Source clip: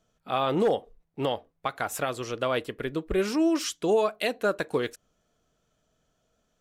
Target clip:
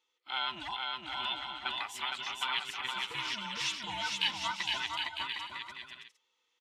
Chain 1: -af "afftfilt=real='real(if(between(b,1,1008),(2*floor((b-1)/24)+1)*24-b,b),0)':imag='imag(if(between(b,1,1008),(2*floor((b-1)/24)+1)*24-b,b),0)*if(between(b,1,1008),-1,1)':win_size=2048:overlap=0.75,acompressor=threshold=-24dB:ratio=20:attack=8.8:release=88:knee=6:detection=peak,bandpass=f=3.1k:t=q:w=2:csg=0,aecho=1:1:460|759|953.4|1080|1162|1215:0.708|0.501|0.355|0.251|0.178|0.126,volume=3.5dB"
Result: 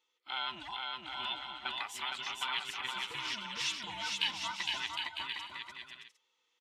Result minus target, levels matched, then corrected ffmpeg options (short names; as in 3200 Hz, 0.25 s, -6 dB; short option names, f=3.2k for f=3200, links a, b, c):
compressor: peak gain reduction +7 dB
-af "afftfilt=real='real(if(between(b,1,1008),(2*floor((b-1)/24)+1)*24-b,b),0)':imag='imag(if(between(b,1,1008),(2*floor((b-1)/24)+1)*24-b,b),0)*if(between(b,1,1008),-1,1)':win_size=2048:overlap=0.75,bandpass=f=3.1k:t=q:w=2:csg=0,aecho=1:1:460|759|953.4|1080|1162|1215:0.708|0.501|0.355|0.251|0.178|0.126,volume=3.5dB"